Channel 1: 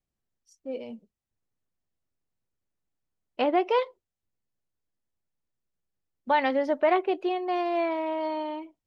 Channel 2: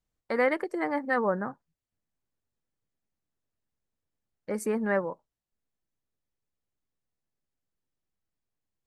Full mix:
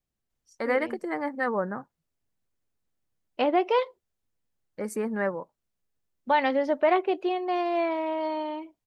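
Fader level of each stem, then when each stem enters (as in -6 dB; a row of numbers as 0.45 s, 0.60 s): +0.5 dB, -1.0 dB; 0.00 s, 0.30 s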